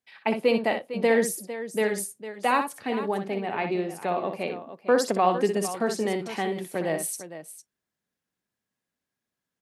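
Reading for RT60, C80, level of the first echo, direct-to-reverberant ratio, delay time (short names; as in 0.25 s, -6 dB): none, none, -7.5 dB, none, 61 ms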